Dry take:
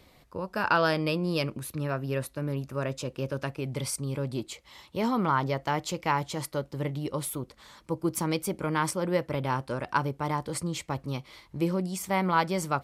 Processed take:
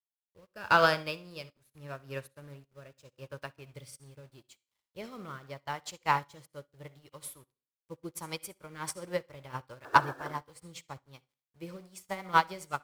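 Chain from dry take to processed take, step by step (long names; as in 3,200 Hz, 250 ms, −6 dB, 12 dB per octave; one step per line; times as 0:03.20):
parametric band 250 Hz −11 dB 1.6 octaves
in parallel at −4.5 dB: soft clipping −26 dBFS, distortion −9 dB
on the sum: sound drawn into the spectrogram noise, 0:09.84–0:10.33, 260–1,800 Hz −30 dBFS
rotating-speaker cabinet horn 0.8 Hz, later 7.5 Hz, at 0:08.46
centre clipping without the shift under −42 dBFS
on a send at −9.5 dB: convolution reverb RT60 0.50 s, pre-delay 53 ms
on the sum: expander for the loud parts 2.5 to 1, over −48 dBFS
level +5 dB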